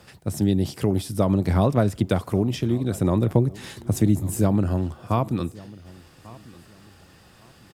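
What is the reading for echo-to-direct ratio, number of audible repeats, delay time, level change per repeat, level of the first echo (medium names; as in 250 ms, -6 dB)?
-21.0 dB, 2, 1144 ms, -11.0 dB, -21.5 dB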